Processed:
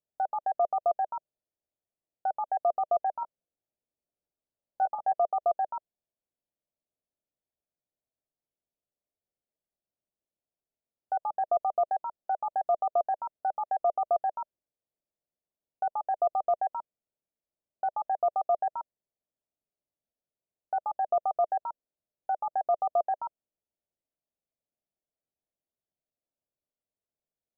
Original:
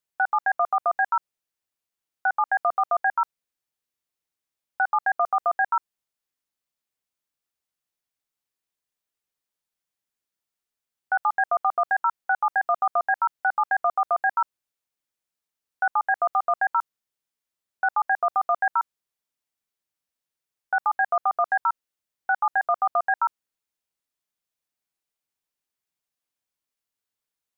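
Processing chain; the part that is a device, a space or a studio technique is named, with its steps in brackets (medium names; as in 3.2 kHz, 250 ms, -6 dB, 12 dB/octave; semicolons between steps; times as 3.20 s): 3.20–5.13 s: doubling 17 ms -5.5 dB; under water (low-pass 710 Hz 24 dB/octave; peaking EQ 620 Hz +6 dB 0.35 oct)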